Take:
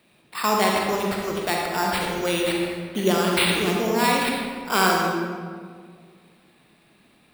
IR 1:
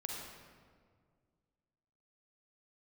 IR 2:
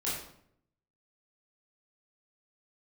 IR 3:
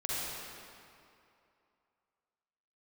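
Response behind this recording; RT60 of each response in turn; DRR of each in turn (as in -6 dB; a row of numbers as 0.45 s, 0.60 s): 1; 1.9 s, 0.70 s, 2.6 s; -1.5 dB, -9.0 dB, -7.5 dB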